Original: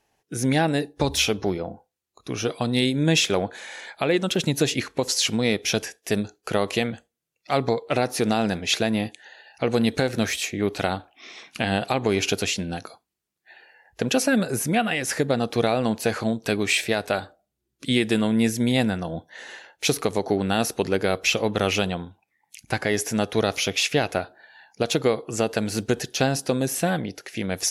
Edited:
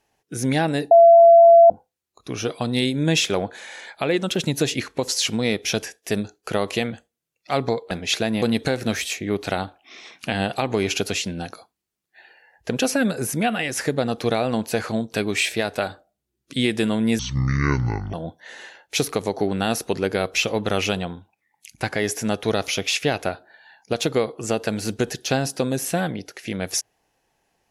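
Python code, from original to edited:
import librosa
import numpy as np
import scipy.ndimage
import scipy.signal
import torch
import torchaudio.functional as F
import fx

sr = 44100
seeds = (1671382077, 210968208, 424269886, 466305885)

y = fx.edit(x, sr, fx.bleep(start_s=0.91, length_s=0.79, hz=676.0, db=-6.5),
    fx.cut(start_s=7.91, length_s=0.6),
    fx.cut(start_s=9.02, length_s=0.72),
    fx.speed_span(start_s=18.51, length_s=0.52, speed=0.55), tone=tone)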